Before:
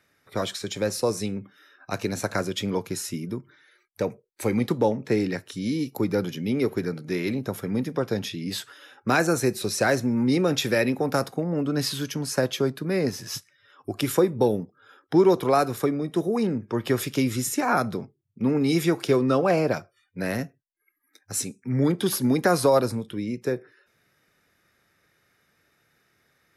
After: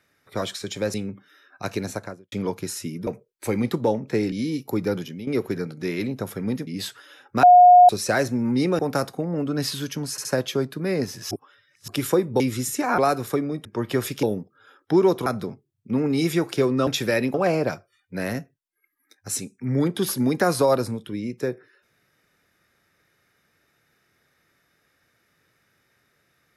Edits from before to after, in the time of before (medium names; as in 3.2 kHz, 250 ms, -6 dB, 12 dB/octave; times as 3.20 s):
0.94–1.22 s: delete
2.07–2.60 s: studio fade out
3.35–4.04 s: delete
5.29–5.59 s: delete
6.27–6.54 s: fade out, to -13.5 dB
7.94–8.39 s: delete
9.15–9.61 s: bleep 718 Hz -7 dBFS
10.51–10.98 s: move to 19.38 s
12.30 s: stutter 0.07 s, 3 plays
13.36–13.93 s: reverse
14.45–15.48 s: swap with 17.19–17.77 s
16.15–16.61 s: delete